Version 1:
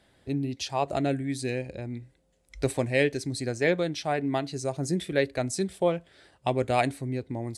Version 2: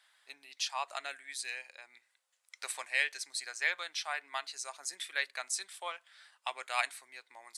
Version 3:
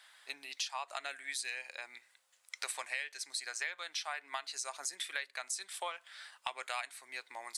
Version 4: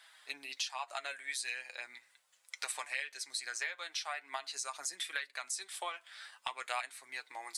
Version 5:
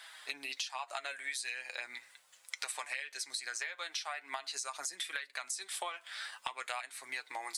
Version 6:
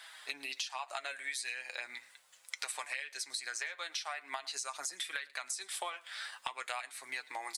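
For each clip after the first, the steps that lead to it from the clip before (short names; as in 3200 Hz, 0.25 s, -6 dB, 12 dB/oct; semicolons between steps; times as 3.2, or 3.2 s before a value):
Chebyshev high-pass 1100 Hz, order 3
compressor 8:1, threshold -43 dBFS, peak gain reduction 18.5 dB; gain +7.5 dB
flange 0.4 Hz, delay 5.9 ms, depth 3.6 ms, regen +32%; gain +4 dB
compressor 4:1, threshold -45 dBFS, peak gain reduction 12 dB; gain +8 dB
echo 0.11 s -23.5 dB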